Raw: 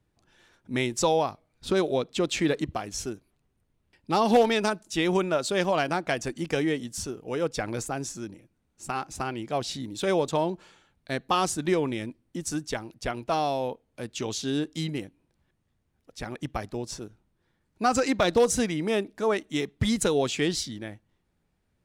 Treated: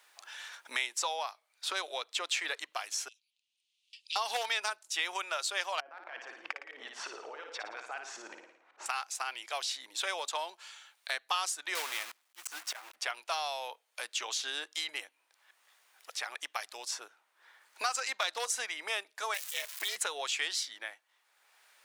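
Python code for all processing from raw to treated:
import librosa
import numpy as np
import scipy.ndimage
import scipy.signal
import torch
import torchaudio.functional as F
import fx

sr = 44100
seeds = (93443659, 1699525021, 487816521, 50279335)

y = fx.chain(x, sr, fx.steep_highpass(hz=2800.0, slope=48),
    fx.air_absorb(metres=94.0), at=(3.08, 4.16))
y = fx.chain(y, sr, fx.filter_lfo_lowpass(shape='saw_up', hz=5.5, low_hz=350.0, high_hz=2300.0, q=0.95),
    fx.over_compress(threshold_db=-37.0, ratio=-1.0),
    fx.room_flutter(wall_m=9.6, rt60_s=0.53), at=(5.8, 8.86))
y = fx.chain(y, sr, fx.block_float(bits=3),
    fx.auto_swell(attack_ms=288.0), at=(11.75, 12.96))
y = fx.chain(y, sr, fx.crossing_spikes(level_db=-27.0),
    fx.ring_mod(carrier_hz=200.0),
    fx.low_shelf(hz=430.0, db=-7.0), at=(19.34, 19.96))
y = scipy.signal.sosfilt(scipy.signal.bessel(4, 1200.0, 'highpass', norm='mag', fs=sr, output='sos'), y)
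y = fx.band_squash(y, sr, depth_pct=70)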